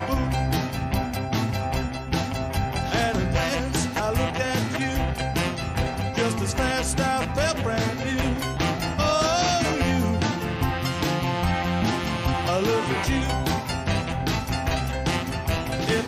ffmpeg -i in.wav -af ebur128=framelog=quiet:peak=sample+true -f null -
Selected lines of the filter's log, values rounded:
Integrated loudness:
  I:         -24.8 LUFS
  Threshold: -34.8 LUFS
Loudness range:
  LRA:         2.0 LU
  Threshold: -44.6 LUFS
  LRA low:   -25.6 LUFS
  LRA high:  -23.5 LUFS
Sample peak:
  Peak:      -12.3 dBFS
True peak:
  Peak:      -12.3 dBFS